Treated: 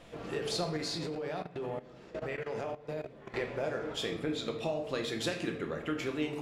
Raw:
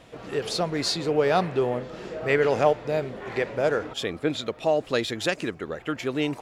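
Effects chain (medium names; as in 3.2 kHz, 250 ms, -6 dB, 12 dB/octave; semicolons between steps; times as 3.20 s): compression 6:1, threshold -28 dBFS, peak gain reduction 13 dB; simulated room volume 220 m³, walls mixed, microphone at 0.81 m; 0.77–3.34 s: level held to a coarse grid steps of 16 dB; trim -4.5 dB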